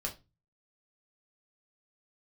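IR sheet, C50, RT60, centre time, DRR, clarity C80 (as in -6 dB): 13.5 dB, 0.25 s, 13 ms, 0.0 dB, 21.5 dB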